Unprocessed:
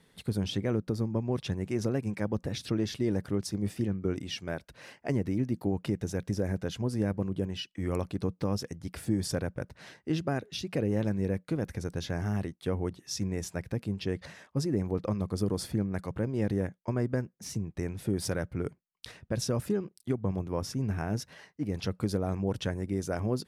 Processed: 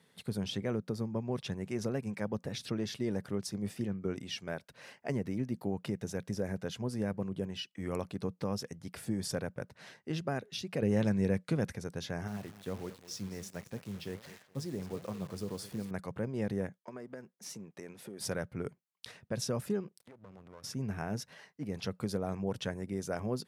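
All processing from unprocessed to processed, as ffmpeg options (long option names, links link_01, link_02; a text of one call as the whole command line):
ffmpeg -i in.wav -filter_complex "[0:a]asettb=1/sr,asplit=3[link_01][link_02][link_03];[link_01]atrim=end=10.824[link_04];[link_02]atrim=start=10.82:end=11.73,asetpts=PTS-STARTPTS,afade=type=in:duration=0.004:curve=qsin,afade=type=out:start_time=0.906:duration=0.004:curve=qsin,lowpass=11000,equalizer=frequency=630:width_type=o:width=2.8:gain=-3.5,acontrast=76[link_05];[link_03]atrim=start=11.726[link_06];[link_04][link_05]acrossfade=duration=0.004:curve1=hsin:curve2=qsin[link_07];[link_07][link_06]acrossfade=duration=0.004:curve1=qsin:curve2=hsin,asettb=1/sr,asplit=3[link_08][link_09][link_10];[link_08]atrim=end=12.274[link_11];[link_09]atrim=start=12.27:end=15.91,asetpts=PTS-STARTPTS,afade=type=in:duration=0.004:curve=qsin,afade=type=out:start_time=3.636:duration=0.004:curve=qsin,aecho=1:1:213|426|639:0.158|0.0539|0.0183,atrim=end_sample=160524,flanger=delay=4:depth=8.1:regen=77:speed=1.4:shape=sinusoidal,acrusher=bits=9:dc=4:mix=0:aa=0.000001[link_12];[link_10]atrim=start=15.906[link_13];[link_11][link_12]acrossfade=duration=0.004:curve1=hsin:curve2=qsin[link_14];[link_14][link_13]acrossfade=duration=0.004:curve1=qsin:curve2=hsin,asettb=1/sr,asplit=3[link_15][link_16][link_17];[link_15]atrim=end=16.784[link_18];[link_16]atrim=start=16.78:end=18.21,asetpts=PTS-STARTPTS,afade=type=in:duration=0.004:curve=qsin,afade=type=out:start_time=1.426:duration=0.004:curve=qsin,aeval=exprs='if(lt(val(0),0),0.708*val(0),val(0))':channel_layout=same,highpass=240,acompressor=threshold=-35dB:ratio=10:attack=3.2:release=140:knee=1:detection=peak[link_19];[link_17]atrim=start=18.206[link_20];[link_18][link_19]acrossfade=duration=0.004:curve1=hsin:curve2=qsin[link_21];[link_21][link_20]acrossfade=duration=0.004:curve1=qsin:curve2=hsin,asettb=1/sr,asplit=3[link_22][link_23][link_24];[link_22]atrim=end=19.994[link_25];[link_23]atrim=start=19.99:end=20.64,asetpts=PTS-STARTPTS,afade=type=in:duration=0.004:curve=qsin,afade=type=out:start_time=0.646:duration=0.004:curve=qsin,equalizer=frequency=1700:width=1.3:gain=9,acompressor=threshold=-42dB:ratio=4:attack=3.2:release=140:knee=1:detection=peak,aeval=exprs='max(val(0),0)':channel_layout=same[link_26];[link_24]atrim=start=20.636[link_27];[link_25][link_26]acrossfade=duration=0.004:curve1=hsin:curve2=qsin[link_28];[link_28][link_27]acrossfade=duration=0.004:curve1=qsin:curve2=hsin,highpass=130,equalizer=frequency=310:width=4.2:gain=-7,volume=-2.5dB" out.wav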